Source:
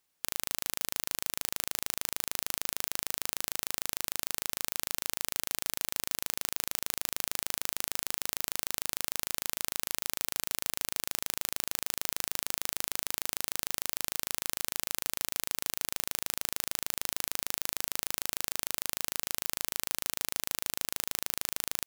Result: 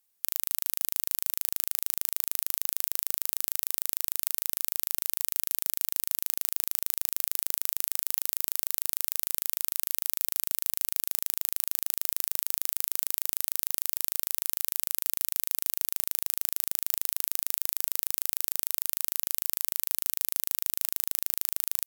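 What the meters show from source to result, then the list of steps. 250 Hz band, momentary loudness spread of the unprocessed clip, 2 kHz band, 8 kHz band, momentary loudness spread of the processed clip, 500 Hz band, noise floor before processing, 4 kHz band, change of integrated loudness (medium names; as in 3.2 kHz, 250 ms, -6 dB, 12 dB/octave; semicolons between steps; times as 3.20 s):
no reading, 0 LU, -5.0 dB, +2.5 dB, 0 LU, -6.0 dB, -78 dBFS, -3.0 dB, +5.0 dB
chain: peaking EQ 16 kHz +15 dB 1.2 oct; trim -6 dB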